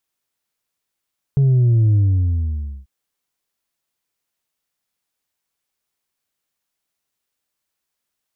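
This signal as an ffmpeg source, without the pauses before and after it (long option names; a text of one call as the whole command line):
ffmpeg -f lavfi -i "aevalsrc='0.266*clip((1.49-t)/0.91,0,1)*tanh(1.33*sin(2*PI*140*1.49/log(65/140)*(exp(log(65/140)*t/1.49)-1)))/tanh(1.33)':duration=1.49:sample_rate=44100" out.wav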